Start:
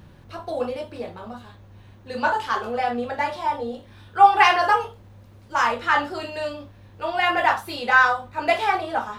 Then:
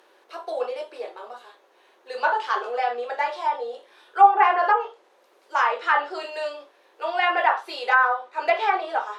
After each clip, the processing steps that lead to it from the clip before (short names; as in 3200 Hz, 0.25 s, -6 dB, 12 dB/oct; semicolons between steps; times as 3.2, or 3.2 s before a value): elliptic high-pass 380 Hz, stop band 70 dB; treble ducked by the level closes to 1400 Hz, closed at -13 dBFS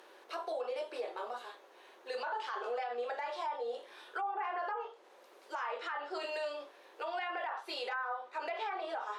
compressor 2.5:1, threshold -35 dBFS, peak gain reduction 17.5 dB; limiter -29.5 dBFS, peak gain reduction 10.5 dB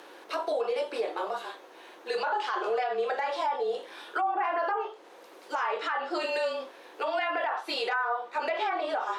frequency shift -30 Hz; gain +8.5 dB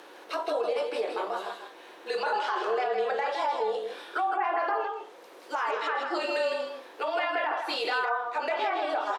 echo 0.16 s -5.5 dB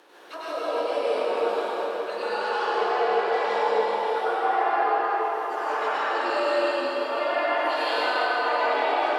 reverb RT60 5.5 s, pre-delay 92 ms, DRR -11 dB; gain -6.5 dB